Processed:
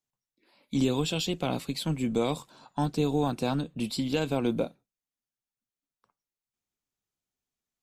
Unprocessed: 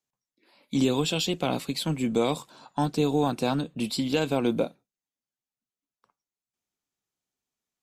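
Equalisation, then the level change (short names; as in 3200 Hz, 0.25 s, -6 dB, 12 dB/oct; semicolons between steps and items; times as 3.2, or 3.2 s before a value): low shelf 97 Hz +10 dB; -3.5 dB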